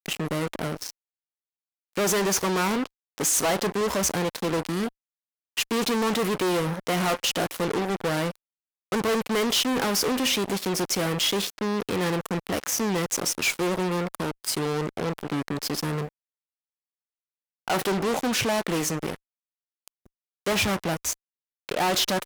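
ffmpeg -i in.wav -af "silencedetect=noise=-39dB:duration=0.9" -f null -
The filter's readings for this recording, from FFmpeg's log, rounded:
silence_start: 0.91
silence_end: 1.96 | silence_duration: 1.05
silence_start: 16.09
silence_end: 17.68 | silence_duration: 1.59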